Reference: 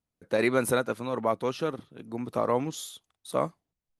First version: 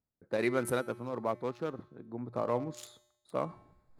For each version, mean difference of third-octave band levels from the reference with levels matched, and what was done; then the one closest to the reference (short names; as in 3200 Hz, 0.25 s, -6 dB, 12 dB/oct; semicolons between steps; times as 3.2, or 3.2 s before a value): 3.5 dB: Wiener smoothing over 15 samples; reverse; upward compressor, threshold -33 dBFS; reverse; resonator 120 Hz, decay 0.83 s, harmonics odd, mix 60%; gain +1.5 dB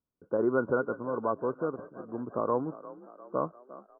9.0 dB: rippled Chebyshev low-pass 1500 Hz, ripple 6 dB; frequency-shifting echo 0.351 s, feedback 57%, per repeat +40 Hz, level -17 dB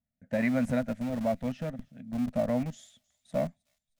6.5 dB: EQ curve 160 Hz 0 dB, 250 Hz +5 dB, 360 Hz -29 dB, 630 Hz +2 dB, 1100 Hz -22 dB, 1800 Hz -2 dB, 4200 Hz -18 dB, 7600 Hz -11 dB, 11000 Hz -28 dB; in parallel at -9.5 dB: Schmitt trigger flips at -32.5 dBFS; on the sum: thin delay 0.312 s, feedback 47%, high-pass 3700 Hz, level -21.5 dB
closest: first